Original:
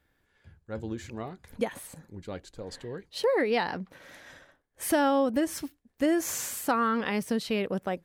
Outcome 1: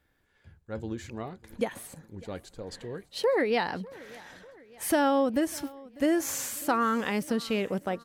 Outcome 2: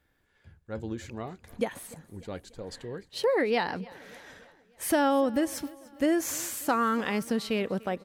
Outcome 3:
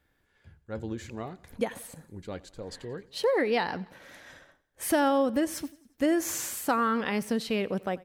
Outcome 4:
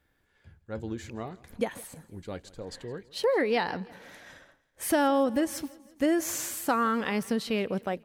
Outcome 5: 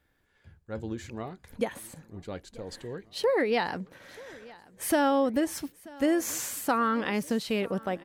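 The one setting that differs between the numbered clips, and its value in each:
feedback echo, time: 597, 295, 89, 164, 934 ms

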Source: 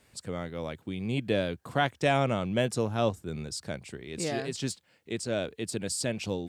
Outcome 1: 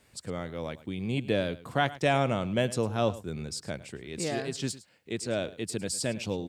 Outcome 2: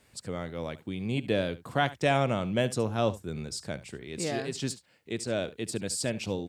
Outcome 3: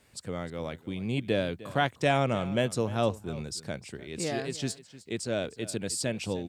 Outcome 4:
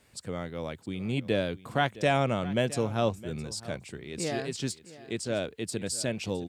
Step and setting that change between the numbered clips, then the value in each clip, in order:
echo, time: 106, 71, 306, 663 ms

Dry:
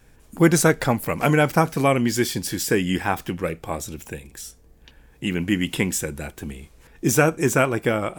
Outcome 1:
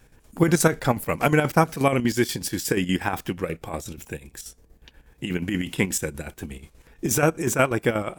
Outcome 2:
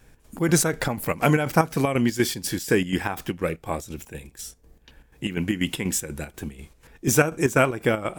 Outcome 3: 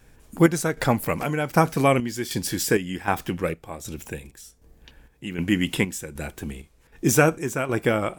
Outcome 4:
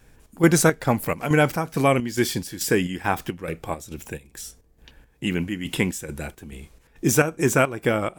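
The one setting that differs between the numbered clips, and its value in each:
chopper, rate: 8.3, 4.1, 1.3, 2.3 Hz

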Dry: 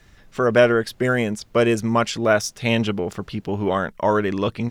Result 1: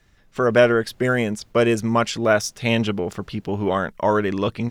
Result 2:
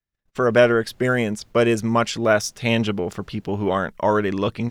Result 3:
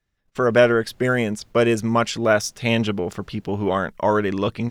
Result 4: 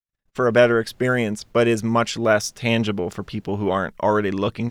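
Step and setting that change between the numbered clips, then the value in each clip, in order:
gate, range: -7, -38, -25, -55 dB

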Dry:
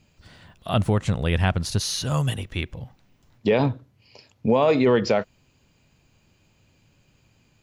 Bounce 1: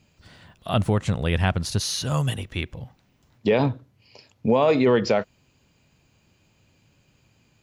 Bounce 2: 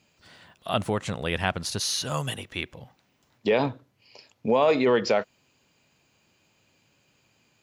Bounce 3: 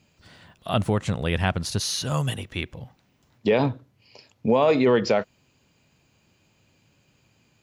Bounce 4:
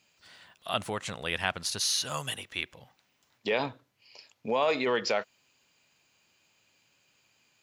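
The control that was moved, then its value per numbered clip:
HPF, cutoff: 45, 370, 120, 1300 Hz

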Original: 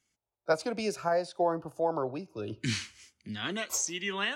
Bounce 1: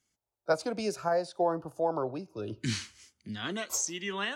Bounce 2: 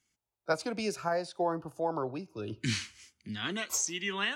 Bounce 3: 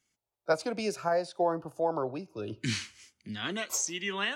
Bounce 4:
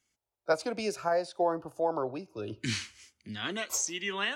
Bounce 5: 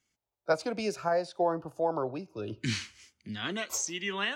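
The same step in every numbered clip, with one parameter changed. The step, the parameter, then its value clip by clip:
bell, frequency: 2400, 580, 63, 160, 10000 Hz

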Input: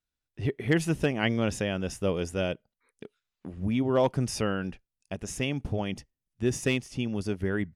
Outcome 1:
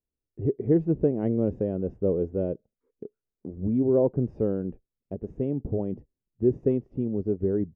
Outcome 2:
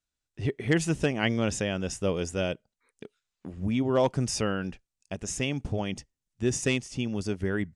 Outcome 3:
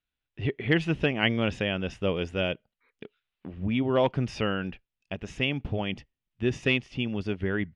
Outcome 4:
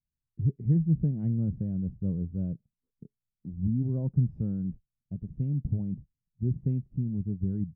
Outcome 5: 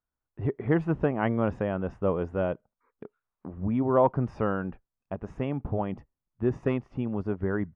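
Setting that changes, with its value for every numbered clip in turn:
synth low-pass, frequency: 430, 7800, 3000, 160, 1100 Hz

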